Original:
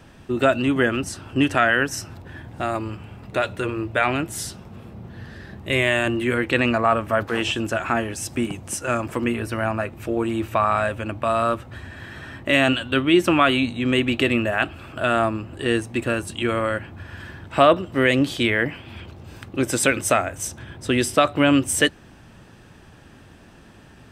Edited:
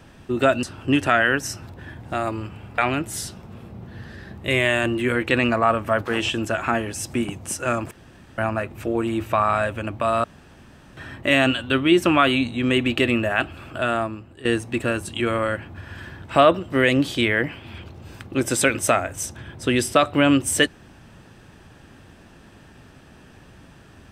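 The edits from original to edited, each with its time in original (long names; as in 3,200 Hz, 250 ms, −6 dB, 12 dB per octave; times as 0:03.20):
0:00.63–0:01.11: remove
0:03.26–0:04.00: remove
0:09.13–0:09.60: fill with room tone
0:11.46–0:12.19: fill with room tone
0:14.89–0:15.67: fade out, to −15 dB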